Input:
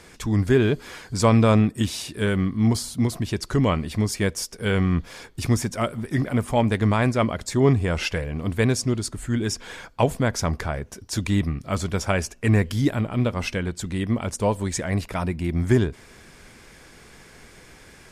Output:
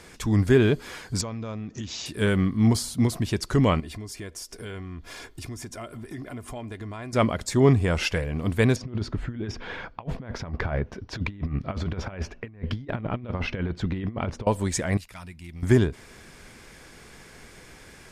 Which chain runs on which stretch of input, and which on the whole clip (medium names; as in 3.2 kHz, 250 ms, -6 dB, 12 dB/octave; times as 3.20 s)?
1.21–2.06 s: low-pass 12 kHz + compression 8:1, threshold -30 dBFS + careless resampling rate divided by 3×, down none, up filtered
3.80–7.13 s: comb 2.9 ms, depth 42% + compression 4:1, threshold -36 dBFS
8.76–14.47 s: compressor with a negative ratio -28 dBFS, ratio -0.5 + distance through air 280 m
14.97–15.63 s: amplifier tone stack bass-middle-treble 5-5-5 + overload inside the chain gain 33 dB
whole clip: none